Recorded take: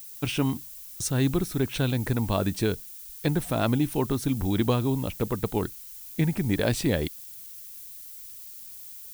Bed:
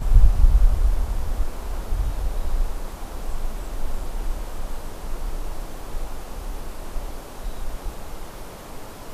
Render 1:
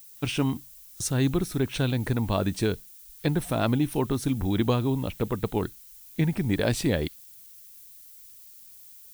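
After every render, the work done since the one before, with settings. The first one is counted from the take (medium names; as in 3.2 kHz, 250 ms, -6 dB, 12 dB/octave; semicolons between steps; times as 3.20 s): noise print and reduce 6 dB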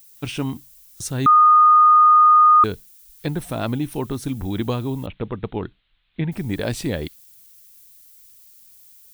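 1.26–2.64 s: bleep 1.23 kHz -8.5 dBFS; 5.06–6.32 s: steep low-pass 3.8 kHz 72 dB/octave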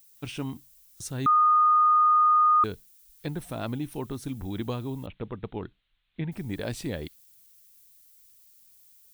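trim -8 dB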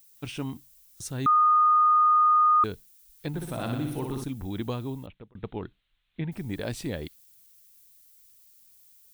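3.28–4.24 s: flutter echo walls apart 10.3 m, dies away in 0.87 s; 4.89–5.35 s: fade out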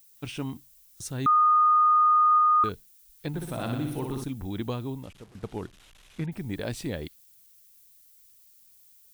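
2.25–2.69 s: flutter echo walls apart 11.4 m, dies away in 0.43 s; 5.03–6.26 s: one-bit delta coder 64 kbps, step -49 dBFS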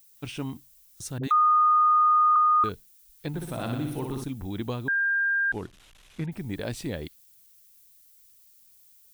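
1.18–2.36 s: phase dispersion highs, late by 53 ms, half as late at 420 Hz; 4.88–5.52 s: bleep 1.6 kHz -21.5 dBFS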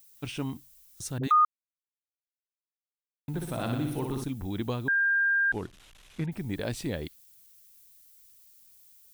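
1.45–3.28 s: mute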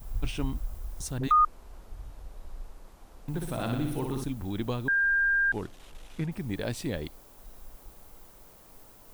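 add bed -18.5 dB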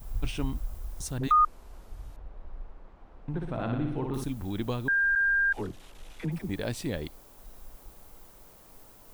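2.16–4.14 s: low-pass 2.2 kHz; 5.15–6.49 s: phase dispersion lows, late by 61 ms, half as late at 580 Hz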